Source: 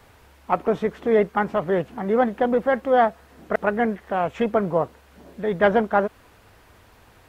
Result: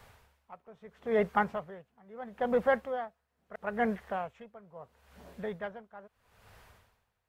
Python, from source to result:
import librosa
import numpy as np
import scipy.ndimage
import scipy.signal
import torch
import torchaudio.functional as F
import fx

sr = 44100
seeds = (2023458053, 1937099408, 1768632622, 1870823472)

y = fx.peak_eq(x, sr, hz=310.0, db=-13.0, octaves=0.49)
y = y * 10.0 ** (-26 * (0.5 - 0.5 * np.cos(2.0 * np.pi * 0.76 * np.arange(len(y)) / sr)) / 20.0)
y = y * librosa.db_to_amplitude(-3.5)